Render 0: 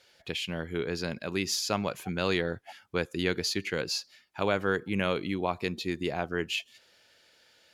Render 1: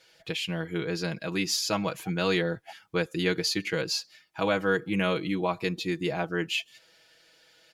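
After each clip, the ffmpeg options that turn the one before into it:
-af "aecho=1:1:6.2:0.77"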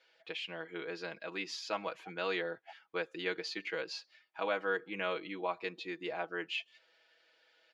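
-af "highpass=440,lowpass=3.3k,volume=-6dB"

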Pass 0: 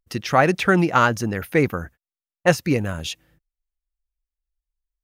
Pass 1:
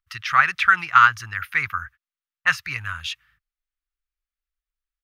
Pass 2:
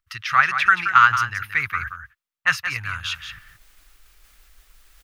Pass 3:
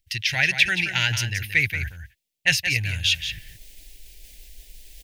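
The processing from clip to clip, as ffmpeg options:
-af "firequalizer=gain_entry='entry(100,0);entry(210,-22);entry(500,-23);entry(1200,14);entry(7200,-1)':delay=0.05:min_phase=1,volume=-7.5dB"
-af "areverse,acompressor=mode=upward:threshold=-24dB:ratio=2.5,areverse,aecho=1:1:176:0.355"
-af "asuperstop=centerf=1200:order=4:qfactor=0.66,volume=8.5dB"

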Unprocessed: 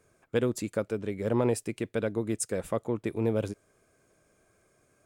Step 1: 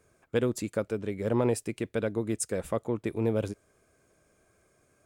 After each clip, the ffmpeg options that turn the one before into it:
-af "equalizer=f=68:t=o:w=0.27:g=8"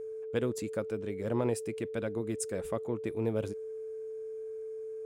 -af "aeval=exprs='val(0)+0.0224*sin(2*PI*440*n/s)':c=same,volume=-4.5dB"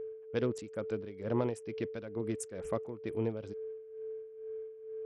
-af "tremolo=f=2.2:d=0.7" -ar 44100 -c:a sbc -b:a 64k

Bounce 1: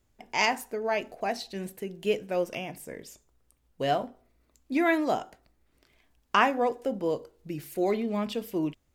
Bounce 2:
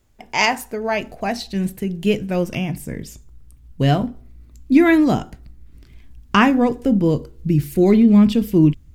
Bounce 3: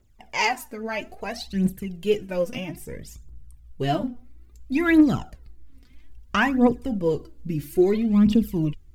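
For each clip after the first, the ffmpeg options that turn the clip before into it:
-af "asubboost=boost=10.5:cutoff=190,volume=8dB"
-af "aphaser=in_gain=1:out_gain=1:delay=4.2:decay=0.67:speed=0.6:type=triangular,volume=-8dB"

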